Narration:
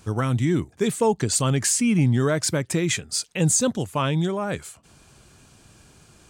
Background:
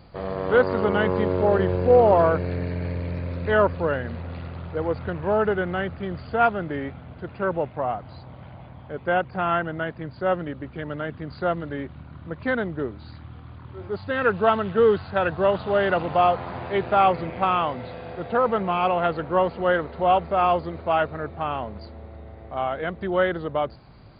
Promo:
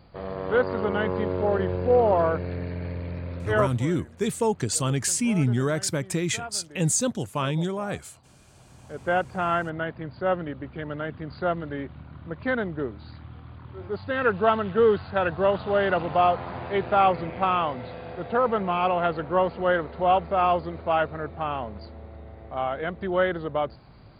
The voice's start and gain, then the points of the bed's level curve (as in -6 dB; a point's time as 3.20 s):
3.40 s, -3.5 dB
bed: 3.62 s -4 dB
3.91 s -17.5 dB
8.43 s -17.5 dB
9.06 s -1.5 dB